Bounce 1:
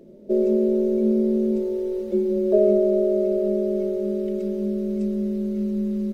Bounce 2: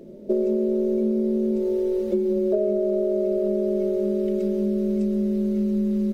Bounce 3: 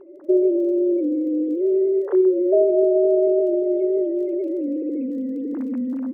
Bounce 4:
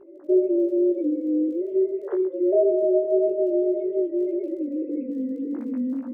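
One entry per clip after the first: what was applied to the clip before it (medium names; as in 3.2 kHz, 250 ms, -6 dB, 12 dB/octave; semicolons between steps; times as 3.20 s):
compression, threshold -24 dBFS, peak gain reduction 11 dB; trim +4.5 dB
formants replaced by sine waves; crackle 19 per s -46 dBFS; reverberation, pre-delay 3 ms, DRR 15.5 dB; trim +2.5 dB
chorus 1.8 Hz, delay 17 ms, depth 2.8 ms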